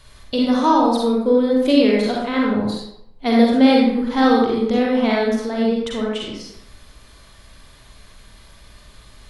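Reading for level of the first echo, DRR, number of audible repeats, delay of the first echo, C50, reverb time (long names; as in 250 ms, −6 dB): no echo audible, −3.0 dB, no echo audible, no echo audible, −1.0 dB, 0.75 s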